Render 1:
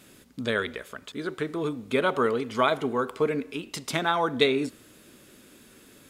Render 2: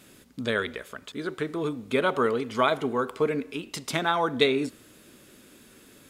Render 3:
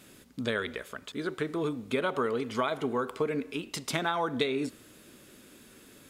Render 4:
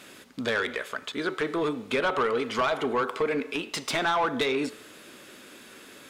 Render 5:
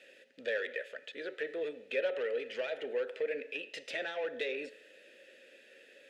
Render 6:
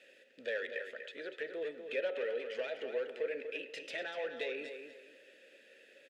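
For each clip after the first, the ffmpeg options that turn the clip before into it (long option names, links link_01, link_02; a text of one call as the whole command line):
ffmpeg -i in.wav -af anull out.wav
ffmpeg -i in.wav -af "acompressor=threshold=-24dB:ratio=6,volume=-1dB" out.wav
ffmpeg -i in.wav -filter_complex "[0:a]bandreject=frequency=433.3:width_type=h:width=4,bandreject=frequency=866.6:width_type=h:width=4,bandreject=frequency=1299.9:width_type=h:width=4,bandreject=frequency=1733.2:width_type=h:width=4,bandreject=frequency=2166.5:width_type=h:width=4,bandreject=frequency=2599.8:width_type=h:width=4,bandreject=frequency=3033.1:width_type=h:width=4,bandreject=frequency=3466.4:width_type=h:width=4,bandreject=frequency=3899.7:width_type=h:width=4,bandreject=frequency=4333:width_type=h:width=4,bandreject=frequency=4766.3:width_type=h:width=4,bandreject=frequency=5199.6:width_type=h:width=4,bandreject=frequency=5632.9:width_type=h:width=4,bandreject=frequency=6066.2:width_type=h:width=4,bandreject=frequency=6499.5:width_type=h:width=4,bandreject=frequency=6932.8:width_type=h:width=4,bandreject=frequency=7366.1:width_type=h:width=4,bandreject=frequency=7799.4:width_type=h:width=4,bandreject=frequency=8232.7:width_type=h:width=4,bandreject=frequency=8666:width_type=h:width=4,bandreject=frequency=9099.3:width_type=h:width=4,bandreject=frequency=9532.6:width_type=h:width=4,bandreject=frequency=9965.9:width_type=h:width=4,bandreject=frequency=10399.2:width_type=h:width=4,bandreject=frequency=10832.5:width_type=h:width=4,bandreject=frequency=11265.8:width_type=h:width=4,bandreject=frequency=11699.1:width_type=h:width=4,bandreject=frequency=12132.4:width_type=h:width=4,bandreject=frequency=12565.7:width_type=h:width=4,bandreject=frequency=12999:width_type=h:width=4,bandreject=frequency=13432.3:width_type=h:width=4,bandreject=frequency=13865.6:width_type=h:width=4,bandreject=frequency=14298.9:width_type=h:width=4,bandreject=frequency=14732.2:width_type=h:width=4,bandreject=frequency=15165.5:width_type=h:width=4,bandreject=frequency=15598.8:width_type=h:width=4,bandreject=frequency=16032.1:width_type=h:width=4,bandreject=frequency=16465.4:width_type=h:width=4,bandreject=frequency=16898.7:width_type=h:width=4,asplit=2[link_01][link_02];[link_02]highpass=frequency=720:poles=1,volume=20dB,asoftclip=type=tanh:threshold=-12dB[link_03];[link_01][link_03]amix=inputs=2:normalize=0,lowpass=frequency=3500:poles=1,volume=-6dB,volume=-3dB" out.wav
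ffmpeg -i in.wav -filter_complex "[0:a]asplit=3[link_01][link_02][link_03];[link_01]bandpass=frequency=530:width_type=q:width=8,volume=0dB[link_04];[link_02]bandpass=frequency=1840:width_type=q:width=8,volume=-6dB[link_05];[link_03]bandpass=frequency=2480:width_type=q:width=8,volume=-9dB[link_06];[link_04][link_05][link_06]amix=inputs=3:normalize=0,highshelf=frequency=3200:gain=10" out.wav
ffmpeg -i in.wav -filter_complex "[0:a]asplit=2[link_01][link_02];[link_02]adelay=243,lowpass=frequency=4600:poles=1,volume=-7.5dB,asplit=2[link_03][link_04];[link_04]adelay=243,lowpass=frequency=4600:poles=1,volume=0.28,asplit=2[link_05][link_06];[link_06]adelay=243,lowpass=frequency=4600:poles=1,volume=0.28[link_07];[link_01][link_03][link_05][link_07]amix=inputs=4:normalize=0,volume=-3dB" out.wav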